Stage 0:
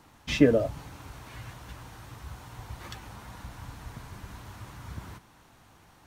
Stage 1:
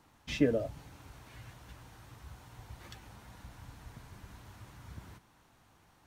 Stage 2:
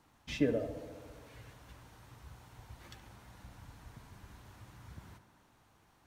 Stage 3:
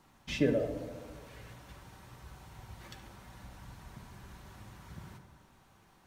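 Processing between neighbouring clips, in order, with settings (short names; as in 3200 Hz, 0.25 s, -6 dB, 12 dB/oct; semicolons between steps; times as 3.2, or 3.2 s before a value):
dynamic EQ 1100 Hz, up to -4 dB, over -53 dBFS, Q 2.2; gain -7.5 dB
tape echo 70 ms, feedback 84%, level -10.5 dB, low-pass 2200 Hz; gain -3 dB
shoebox room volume 2000 m³, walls furnished, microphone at 1.1 m; gain +3 dB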